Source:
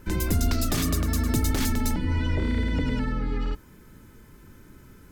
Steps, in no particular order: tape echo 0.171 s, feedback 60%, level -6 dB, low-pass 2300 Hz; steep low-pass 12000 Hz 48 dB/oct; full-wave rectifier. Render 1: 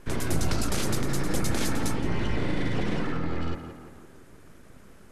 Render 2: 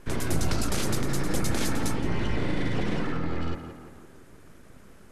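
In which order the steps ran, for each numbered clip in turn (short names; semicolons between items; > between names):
full-wave rectifier > tape echo > steep low-pass; full-wave rectifier > steep low-pass > tape echo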